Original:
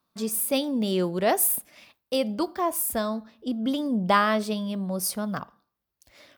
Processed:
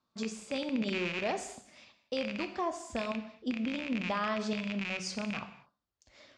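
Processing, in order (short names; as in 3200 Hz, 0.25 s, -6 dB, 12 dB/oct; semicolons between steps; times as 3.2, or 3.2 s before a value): rattling part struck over -35 dBFS, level -13 dBFS; Chebyshev low-pass 7300 Hz, order 5; limiter -20 dBFS, peak gain reduction 11.5 dB; non-linear reverb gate 0.28 s falling, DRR 8 dB; gain -4.5 dB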